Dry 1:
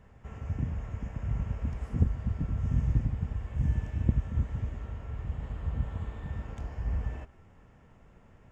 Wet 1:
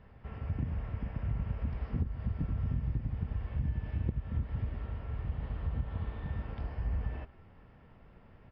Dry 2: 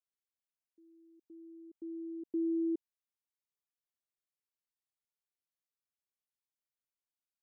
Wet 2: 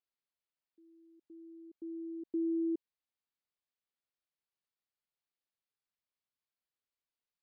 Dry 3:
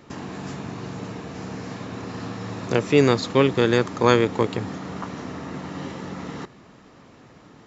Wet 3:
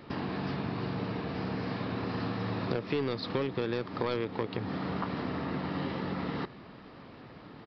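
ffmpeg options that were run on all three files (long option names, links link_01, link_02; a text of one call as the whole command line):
ffmpeg -i in.wav -af "aresample=11025,volume=12dB,asoftclip=hard,volume=-12dB,aresample=44100,acompressor=threshold=-28dB:ratio=10" out.wav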